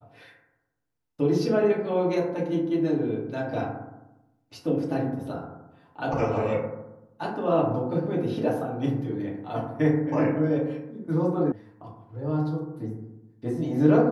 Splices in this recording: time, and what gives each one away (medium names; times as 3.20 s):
11.52 s: sound stops dead